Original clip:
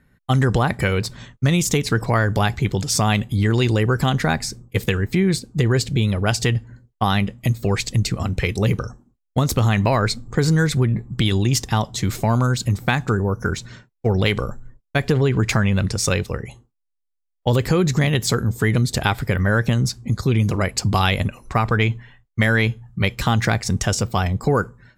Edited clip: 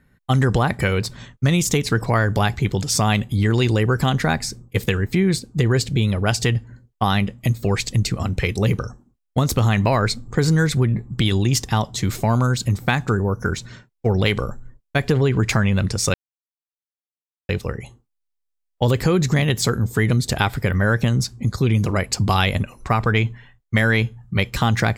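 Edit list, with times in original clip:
16.14 s: insert silence 1.35 s

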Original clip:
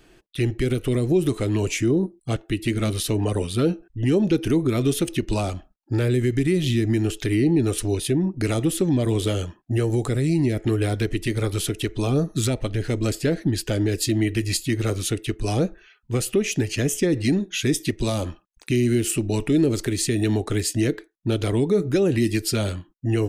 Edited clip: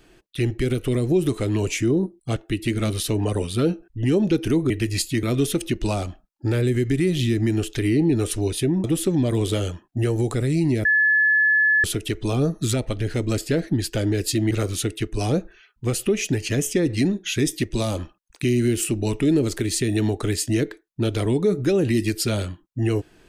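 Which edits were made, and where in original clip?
8.31–8.58 s: delete
10.59–11.58 s: bleep 1.72 kHz -14.5 dBFS
14.25–14.78 s: move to 4.70 s

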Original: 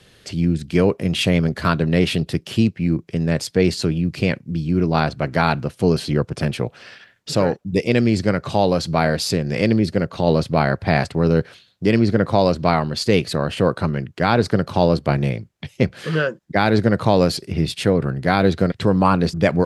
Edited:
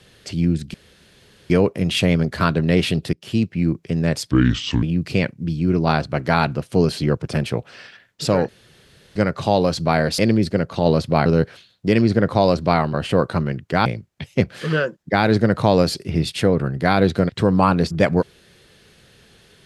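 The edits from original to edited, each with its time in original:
0.74 s: insert room tone 0.76 s
2.37–2.88 s: fade in equal-power, from -18.5 dB
3.55–3.90 s: speed 68%
7.56–8.23 s: room tone
9.26–9.60 s: delete
10.67–11.23 s: delete
12.91–13.41 s: delete
14.33–15.28 s: delete

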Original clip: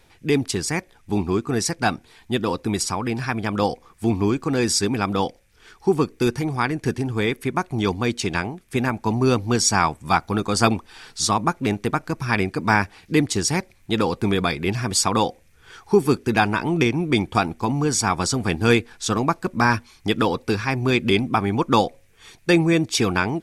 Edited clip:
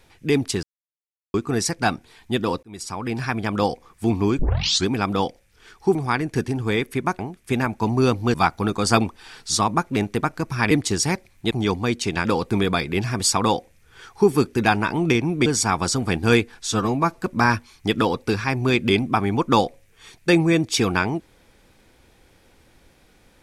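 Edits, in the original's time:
0.63–1.34 s: mute
2.63–3.20 s: fade in
4.39 s: tape start 0.48 s
5.95–6.45 s: delete
7.69–8.43 s: move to 13.96 s
9.58–10.04 s: delete
12.41–13.16 s: delete
17.17–17.84 s: delete
19.04–19.39 s: stretch 1.5×

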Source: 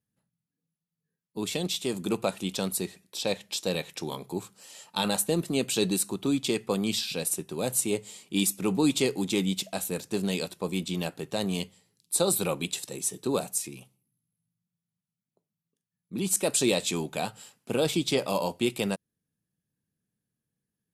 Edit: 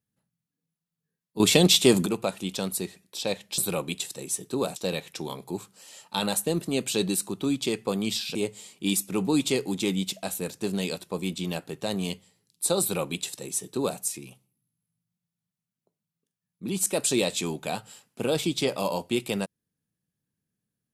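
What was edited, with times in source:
1.40–2.06 s: gain +12 dB
7.17–7.85 s: delete
12.31–13.49 s: copy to 3.58 s

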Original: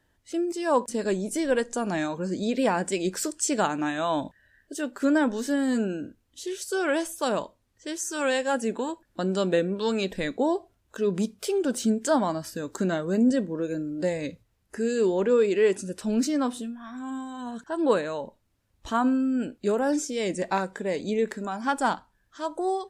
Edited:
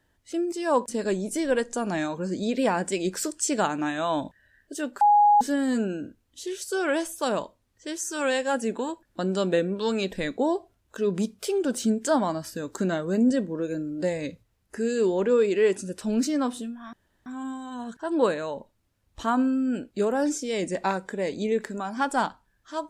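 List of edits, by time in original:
5.01–5.41 s: bleep 828 Hz -14 dBFS
16.93 s: insert room tone 0.33 s

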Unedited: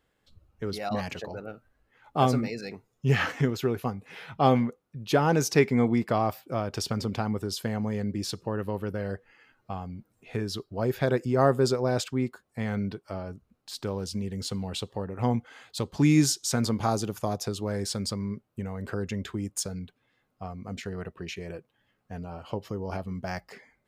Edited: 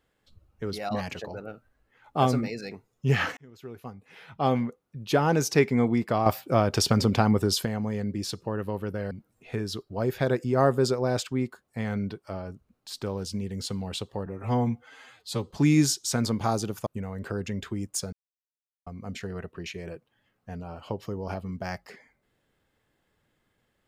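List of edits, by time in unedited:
3.37–4.98 s: fade in
6.26–7.65 s: gain +7.5 dB
9.11–9.92 s: delete
15.07–15.90 s: stretch 1.5×
17.26–18.49 s: delete
19.75–20.49 s: mute

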